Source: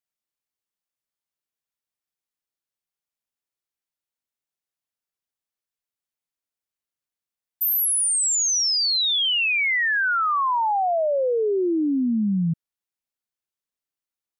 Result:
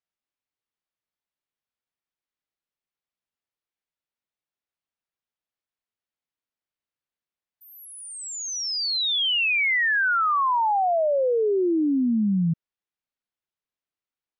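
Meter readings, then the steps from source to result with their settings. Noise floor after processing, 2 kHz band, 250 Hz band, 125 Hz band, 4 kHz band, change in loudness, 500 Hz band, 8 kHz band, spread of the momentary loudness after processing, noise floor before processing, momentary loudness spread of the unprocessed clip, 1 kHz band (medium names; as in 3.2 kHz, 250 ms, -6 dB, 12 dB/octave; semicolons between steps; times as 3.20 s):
under -85 dBFS, -0.5 dB, 0.0 dB, 0.0 dB, -3.0 dB, -1.5 dB, 0.0 dB, -12.0 dB, 13 LU, under -85 dBFS, 4 LU, 0.0 dB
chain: low-pass 3.9 kHz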